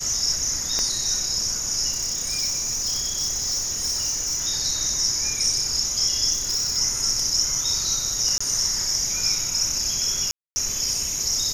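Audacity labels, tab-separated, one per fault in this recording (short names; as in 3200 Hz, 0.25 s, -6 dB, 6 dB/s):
0.790000	0.790000	pop -11 dBFS
1.900000	4.470000	clipped -21 dBFS
6.320000	6.780000	clipped -20 dBFS
8.380000	8.400000	gap 25 ms
10.310000	10.560000	gap 0.25 s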